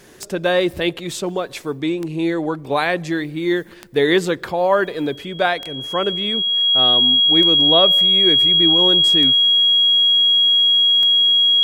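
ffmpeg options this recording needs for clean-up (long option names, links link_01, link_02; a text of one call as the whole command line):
ffmpeg -i in.wav -af "adeclick=threshold=4,bandreject=frequency=3300:width=30" out.wav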